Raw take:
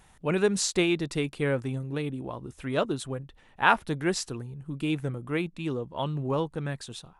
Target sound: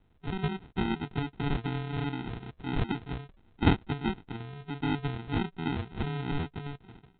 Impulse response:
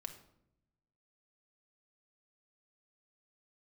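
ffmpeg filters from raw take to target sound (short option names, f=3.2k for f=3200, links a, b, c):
-af "dynaudnorm=f=300:g=9:m=7.5dB,aresample=8000,acrusher=samples=14:mix=1:aa=0.000001,aresample=44100,volume=-7dB"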